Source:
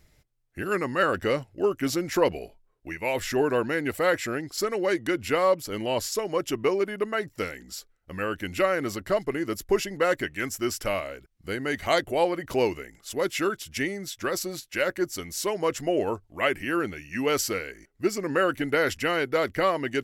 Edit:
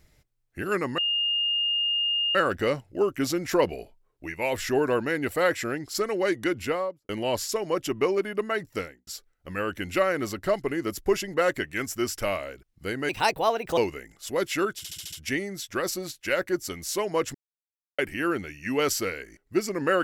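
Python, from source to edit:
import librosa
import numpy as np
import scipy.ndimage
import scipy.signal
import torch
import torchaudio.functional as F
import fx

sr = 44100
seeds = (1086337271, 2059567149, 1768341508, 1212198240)

y = fx.studio_fade_out(x, sr, start_s=5.17, length_s=0.55)
y = fx.studio_fade_out(y, sr, start_s=7.37, length_s=0.33)
y = fx.edit(y, sr, fx.insert_tone(at_s=0.98, length_s=1.37, hz=2830.0, db=-22.5),
    fx.speed_span(start_s=11.72, length_s=0.89, speed=1.3),
    fx.stutter(start_s=13.61, slice_s=0.07, count=6),
    fx.silence(start_s=15.83, length_s=0.64), tone=tone)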